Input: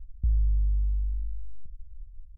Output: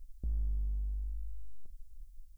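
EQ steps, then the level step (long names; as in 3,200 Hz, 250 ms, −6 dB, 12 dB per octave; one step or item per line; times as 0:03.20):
bass and treble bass −13 dB, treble +11 dB
parametric band 91 Hz −14 dB 1.1 octaves
+7.5 dB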